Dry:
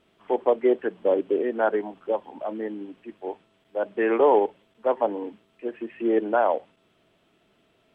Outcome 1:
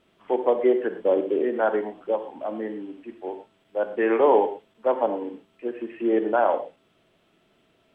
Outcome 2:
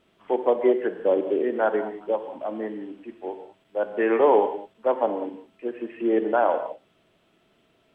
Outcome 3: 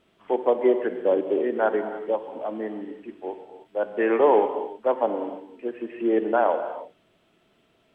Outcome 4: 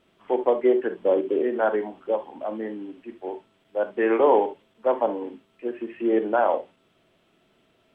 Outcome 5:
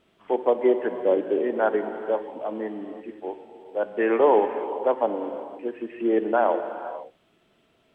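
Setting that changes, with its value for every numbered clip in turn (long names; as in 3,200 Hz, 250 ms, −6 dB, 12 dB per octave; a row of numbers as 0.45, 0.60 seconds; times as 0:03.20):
reverb whose tail is shaped and stops, gate: 140, 220, 350, 90, 540 milliseconds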